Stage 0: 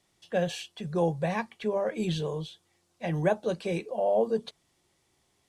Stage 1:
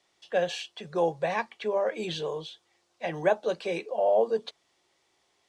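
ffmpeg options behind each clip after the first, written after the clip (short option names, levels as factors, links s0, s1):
-filter_complex "[0:a]acrossover=split=340 7300:gain=0.178 1 0.178[s0][s1][s2];[s0][s1][s2]amix=inputs=3:normalize=0,volume=1.41"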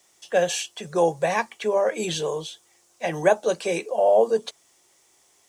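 -af "aexciter=amount=5.4:drive=3.4:freq=5900,volume=1.88"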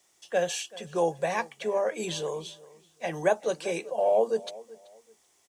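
-filter_complex "[0:a]asplit=2[s0][s1];[s1]adelay=382,lowpass=f=3400:p=1,volume=0.1,asplit=2[s2][s3];[s3]adelay=382,lowpass=f=3400:p=1,volume=0.27[s4];[s0][s2][s4]amix=inputs=3:normalize=0,volume=0.531"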